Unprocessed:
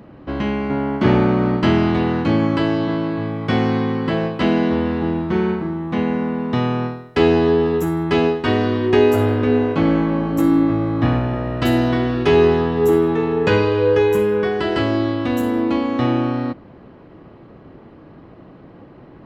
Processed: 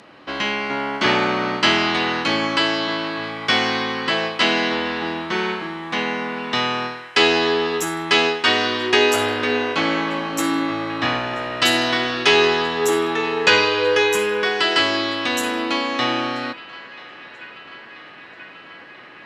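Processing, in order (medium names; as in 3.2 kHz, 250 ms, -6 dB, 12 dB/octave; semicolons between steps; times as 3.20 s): frequency weighting ITU-R 468; on a send: band-passed feedback delay 985 ms, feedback 85%, band-pass 1.8 kHz, level -18.5 dB; on the sum: trim +3 dB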